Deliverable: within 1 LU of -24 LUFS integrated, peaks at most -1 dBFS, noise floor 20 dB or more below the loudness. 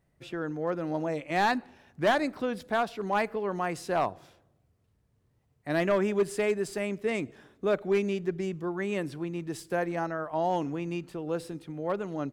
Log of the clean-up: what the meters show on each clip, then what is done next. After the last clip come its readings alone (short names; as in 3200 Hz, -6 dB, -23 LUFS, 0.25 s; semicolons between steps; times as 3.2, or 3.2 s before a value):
clipped 0.5%; flat tops at -19.0 dBFS; loudness -30.5 LUFS; peak -19.0 dBFS; loudness target -24.0 LUFS
-> clip repair -19 dBFS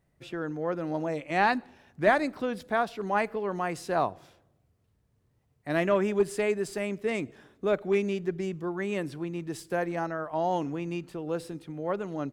clipped 0.0%; loudness -30.0 LUFS; peak -10.5 dBFS; loudness target -24.0 LUFS
-> gain +6 dB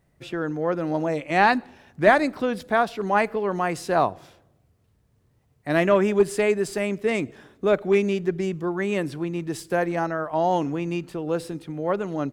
loudness -24.0 LUFS; peak -4.5 dBFS; noise floor -65 dBFS